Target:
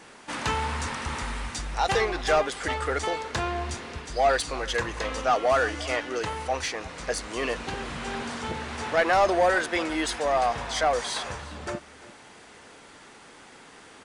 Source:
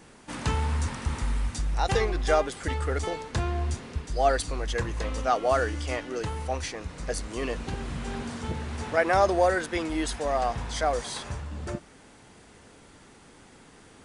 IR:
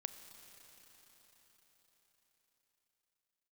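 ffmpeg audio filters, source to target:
-filter_complex "[0:a]asplit=2[s0][s1];[s1]highpass=f=720:p=1,volume=5.62,asoftclip=type=tanh:threshold=0.316[s2];[s0][s2]amix=inputs=2:normalize=0,lowpass=f=4900:p=1,volume=0.501,aecho=1:1:347:0.119,volume=0.75"

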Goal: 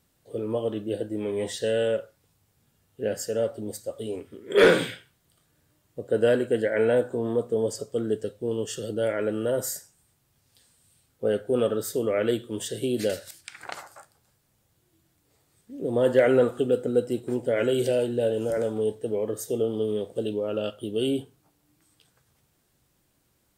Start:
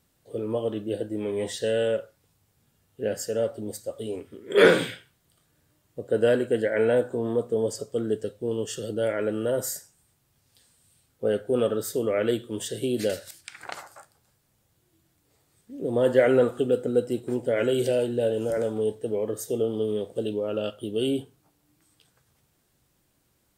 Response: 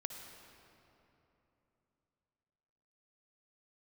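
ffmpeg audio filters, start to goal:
-af "asoftclip=type=hard:threshold=0.355"

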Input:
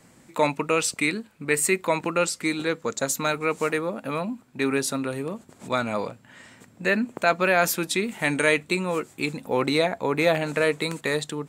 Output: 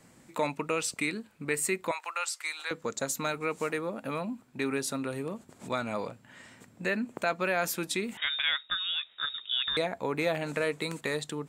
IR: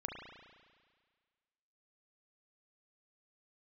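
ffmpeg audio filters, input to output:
-filter_complex "[0:a]asettb=1/sr,asplit=3[s0][s1][s2];[s0]atrim=end=1.914[s3];[s1]atrim=start=1.91:end=2.71,asetpts=PTS-STARTPTS,afade=t=in:d=0.004:c=qsin,afade=t=out:st=0.796:d=0.004:c=qsin,highpass=f=800:w=0.5412,highpass=f=800:w=1.3066[s4];[s2]atrim=start=2.706[s5];[s3][s4]acrossfade=d=0.004:c1=hsin:c2=qsin[s6];[s6][s5]acrossfade=d=0.004:c1=qsin:c2=hsin,acompressor=threshold=0.0355:ratio=1.5,asettb=1/sr,asplit=3[s7][s8][s9];[s7]atrim=end=8.174[s10];[s8]atrim=start=8.17:end=9.77,asetpts=PTS-STARTPTS,afade=t=in:d=0.004:c=qsin,afade=t=out:st=1.596:d=0.004:c=qsin,lowpass=f=3300:t=q:w=0.5098,lowpass=f=3300:t=q:w=0.6013,lowpass=f=3300:t=q:w=0.9,lowpass=f=3300:t=q:w=2.563,afreqshift=-3900[s11];[s9]atrim=start=9.766[s12];[s10][s11]acrossfade=d=0.004:c1=hsin:c2=qsin[s13];[s13][s12]acrossfade=d=0.004:c1=qsin:c2=hsin,volume=0.668"

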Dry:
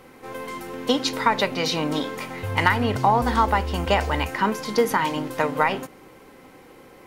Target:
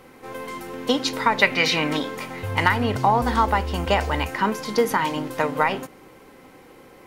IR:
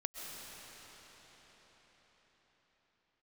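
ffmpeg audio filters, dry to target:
-filter_complex "[0:a]asettb=1/sr,asplit=3[s0][s1][s2];[s0]atrim=end=1.424[s3];[s1]atrim=start=1.42:end=1.97,asetpts=PTS-STARTPTS,afade=t=in:d=0.004:c=qsin,afade=t=out:st=0.546:d=0.004:c=qsin,equalizer=f=2100:w=1.4:g=12[s4];[s2]atrim=start=1.966[s5];[s3][s4]acrossfade=d=0.004:c1=hsin:c2=qsin[s6];[s6][s5]acrossfade=d=0.004:c1=qsin:c2=hsin"

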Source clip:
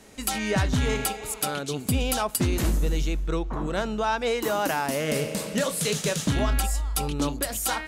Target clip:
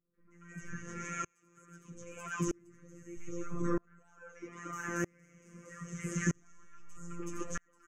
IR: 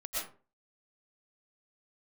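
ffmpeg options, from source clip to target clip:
-filter_complex "[0:a]asettb=1/sr,asplit=3[s0][s1][s2];[s0]atrim=end=0.764[s3];[s1]atrim=start=0.76:end=3.17,asetpts=PTS-STARTPTS,afade=t=in:d=0.004:c=qsin,afade=t=out:st=2.406:d=0.004:c=qsin,highpass=f=82:w=0.5412,highpass=f=82:w=1.3066[s4];[s2]atrim=start=3.166[s5];[s3][s4]acrossfade=d=0.004:c1=hsin:c2=qsin[s6];[s6][s5]acrossfade=d=0.004:c1=qsin:c2=hsin,alimiter=limit=0.0841:level=0:latency=1:release=135,firequalizer=gain_entry='entry(350,0);entry(550,-9);entry(780,-27);entry(1100,4);entry(2100,0);entry(4000,-28);entry(6400,7);entry(9800,-16)':delay=0.05:min_phase=1[s7];[1:a]atrim=start_sample=2205,atrim=end_sample=3969[s8];[s7][s8]afir=irnorm=-1:irlink=0,acrossover=split=4800[s9][s10];[s10]acompressor=threshold=0.00224:ratio=4:attack=1:release=60[s11];[s9][s11]amix=inputs=2:normalize=0,acrossover=split=950|2900[s12][s13][s14];[s13]adelay=140[s15];[s14]adelay=310[s16];[s12][s15][s16]amix=inputs=3:normalize=0,afftfilt=real='hypot(re,im)*cos(PI*b)':imag='0':win_size=1024:overlap=0.75,asoftclip=type=tanh:threshold=0.119,flanger=delay=7:depth=1.8:regen=42:speed=1.7:shape=triangular,aeval=exprs='val(0)*pow(10,-35*if(lt(mod(-0.79*n/s,1),2*abs(-0.79)/1000),1-mod(-0.79*n/s,1)/(2*abs(-0.79)/1000),(mod(-0.79*n/s,1)-2*abs(-0.79)/1000)/(1-2*abs(-0.79)/1000))/20)':c=same,volume=6.68"

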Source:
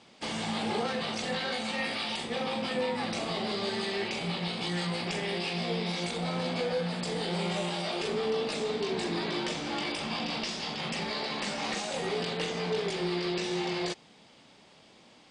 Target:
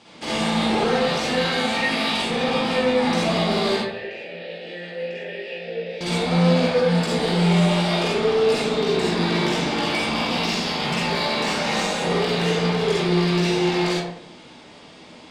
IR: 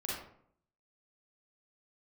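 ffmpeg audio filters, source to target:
-filter_complex "[0:a]asettb=1/sr,asplit=3[s0][s1][s2];[s0]atrim=end=3.764[s3];[s1]atrim=start=3.76:end=6.01,asetpts=PTS-STARTPTS,afade=t=in:d=0.004:c=qsin,afade=t=out:st=2.246:d=0.004:c=qsin,asplit=3[s4][s5][s6];[s4]bandpass=f=530:t=q:w=8,volume=1[s7];[s5]bandpass=f=1840:t=q:w=8,volume=0.501[s8];[s6]bandpass=f=2480:t=q:w=8,volume=0.355[s9];[s7][s8][s9]amix=inputs=3:normalize=0[s10];[s2]atrim=start=6.006[s11];[s3][s10]acrossfade=d=0.004:c1=hsin:c2=qsin[s12];[s12][s11]acrossfade=d=0.004:c1=qsin:c2=hsin,asoftclip=type=tanh:threshold=0.0422[s13];[1:a]atrim=start_sample=2205,asetrate=36162,aresample=44100[s14];[s13][s14]afir=irnorm=-1:irlink=0,volume=2.66"

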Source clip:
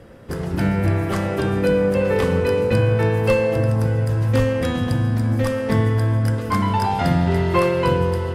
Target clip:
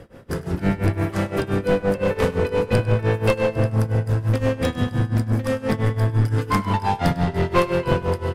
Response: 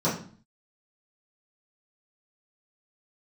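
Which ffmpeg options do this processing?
-filter_complex "[0:a]asettb=1/sr,asplit=3[s0][s1][s2];[s0]atrim=end=6.094[s3];[s1]atrim=start=6.09:end=6.52,asetpts=PTS-STARTPTS,afade=t=in:d=0.004:c=qsin,afade=t=out:st=0.426:d=0.004:c=qsin,aecho=1:1:6.8:0.98,atrim=end_sample=18963[s4];[s2]atrim=start=6.516[s5];[s3][s4]acrossfade=d=0.004:c1=hsin:c2=qsin[s6];[s6][s5]acrossfade=d=0.004:c1=qsin:c2=hsin,tremolo=f=5.8:d=0.92,aeval=exprs='clip(val(0),-1,0.0891)':c=same,asplit=2[s7][s8];[s8]aecho=0:1:100:0.112[s9];[s7][s9]amix=inputs=2:normalize=0,volume=1.41"

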